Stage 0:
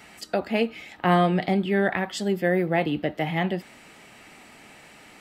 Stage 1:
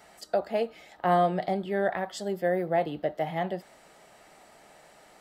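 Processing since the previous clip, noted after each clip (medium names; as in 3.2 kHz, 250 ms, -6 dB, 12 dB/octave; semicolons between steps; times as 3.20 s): fifteen-band graphic EQ 100 Hz -9 dB, 250 Hz -8 dB, 630 Hz +7 dB, 2.5 kHz -9 dB; trim -5 dB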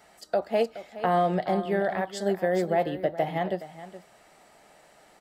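peak limiter -20 dBFS, peak gain reduction 7 dB; on a send: delay 420 ms -10 dB; on the sum: upward expansion 1.5:1, over -41 dBFS; trim +5.5 dB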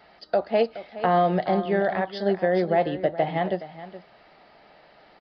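resampled via 11.025 kHz; trim +3 dB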